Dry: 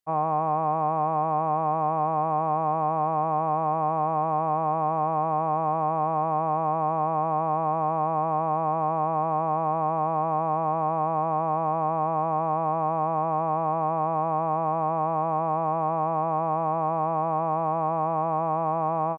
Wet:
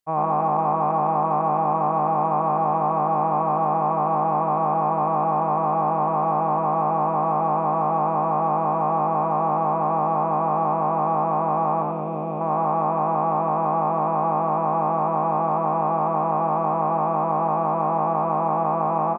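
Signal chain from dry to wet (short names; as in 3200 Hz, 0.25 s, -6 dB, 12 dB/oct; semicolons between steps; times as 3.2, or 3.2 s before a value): 11.82–12.41 band shelf 1200 Hz -10.5 dB; frequency-shifting echo 91 ms, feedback 36%, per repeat +50 Hz, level -4 dB; gain +2 dB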